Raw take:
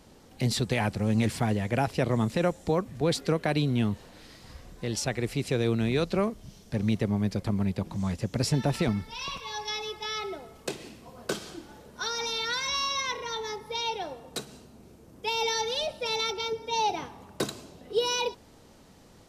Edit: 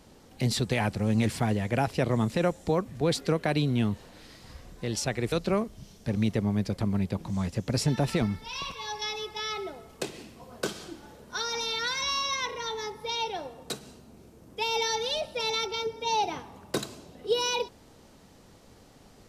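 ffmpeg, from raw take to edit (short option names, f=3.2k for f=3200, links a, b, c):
-filter_complex "[0:a]asplit=2[a][b];[a]atrim=end=5.322[c];[b]atrim=start=5.978[d];[c][d]acrossfade=d=0.004:c1=hsin:c2=hsin"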